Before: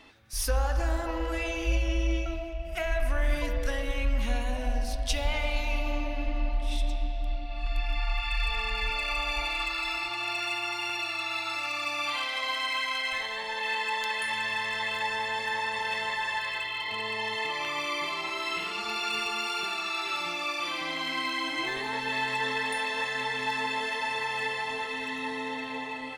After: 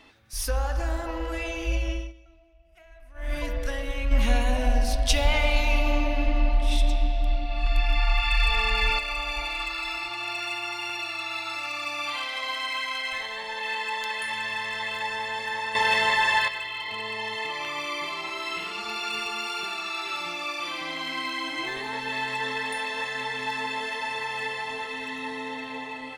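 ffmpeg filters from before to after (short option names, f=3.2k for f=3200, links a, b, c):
-filter_complex "[0:a]asettb=1/sr,asplit=3[a][b][c];[a]atrim=end=4.114[d];[b]atrim=start=4.11:end=8.99,asetpts=PTS-STARTPTS,afade=t=in:d=0.004:c=qsin,afade=t=out:st=4.876:d=0.004:c=qsin,acontrast=72[e];[c]atrim=start=8.986[f];[d][e]acrossfade=d=0.004:c1=hsin:c2=qsin[g];[g][f]acrossfade=d=0.004:c1=qsin:c2=hsin,asplit=5[h][i][j][k][l];[h]atrim=end=2.13,asetpts=PTS-STARTPTS,afade=t=out:st=1.89:d=0.24:silence=0.0749894[m];[i]atrim=start=2.13:end=3.14,asetpts=PTS-STARTPTS,volume=-22.5dB[n];[j]atrim=start=3.14:end=15.752,asetpts=PTS-STARTPTS,afade=t=in:d=0.24:silence=0.0749894[o];[k]atrim=start=15.748:end=16.482,asetpts=PTS-STARTPTS,volume=9dB[p];[l]atrim=start=16.478[q];[m][n][o]concat=n=3:v=0:a=1[r];[r][p]acrossfade=d=0.004:c1=hsin:c2=hsin[s];[s][q]acrossfade=d=0.004:c1=hsin:c2=hsin"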